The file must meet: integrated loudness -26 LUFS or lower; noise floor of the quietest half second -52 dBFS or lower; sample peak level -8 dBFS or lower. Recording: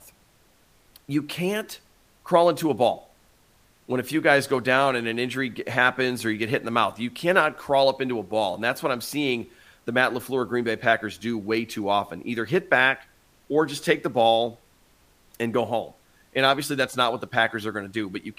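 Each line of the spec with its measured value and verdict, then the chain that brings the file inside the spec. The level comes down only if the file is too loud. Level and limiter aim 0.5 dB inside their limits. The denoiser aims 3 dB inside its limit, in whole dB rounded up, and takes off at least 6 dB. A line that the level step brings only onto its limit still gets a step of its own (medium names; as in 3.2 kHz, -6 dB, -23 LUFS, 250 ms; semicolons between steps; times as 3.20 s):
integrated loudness -24.0 LUFS: fail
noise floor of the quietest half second -60 dBFS: pass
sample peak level -4.5 dBFS: fail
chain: trim -2.5 dB; peak limiter -8.5 dBFS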